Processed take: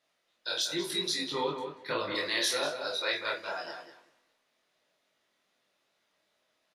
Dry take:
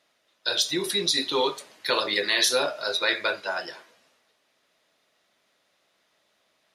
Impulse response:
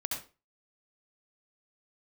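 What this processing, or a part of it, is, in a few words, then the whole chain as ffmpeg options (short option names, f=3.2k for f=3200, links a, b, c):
double-tracked vocal: -filter_complex "[0:a]asplit=2[a][b];[b]adelay=26,volume=-2.5dB[c];[a][c]amix=inputs=2:normalize=0,flanger=delay=17.5:depth=5.4:speed=2.5,asettb=1/sr,asplit=3[d][e][f];[d]atrim=end=1.324[g];[e]atrim=start=1.32:end=2.15,asetpts=PTS-STARTPTS,afade=t=in:d=0.004:c=qsin,afade=t=out:st=0.826:d=0.004:c=qsin,bass=f=250:g=10,treble=f=4k:g=-15[h];[f]atrim=start=2.146[i];[g][h]acrossfade=d=0.004:c1=hsin:c2=qsin[j];[j][i]acrossfade=d=0.004:c1=qsin:c2=hsin,asplit=2[k][l];[l]adelay=190,lowpass=f=2.6k:p=1,volume=-6.5dB,asplit=2[m][n];[n]adelay=190,lowpass=f=2.6k:p=1,volume=0.16,asplit=2[o][p];[p]adelay=190,lowpass=f=2.6k:p=1,volume=0.16[q];[k][m][o][q]amix=inputs=4:normalize=0,volume=-6dB"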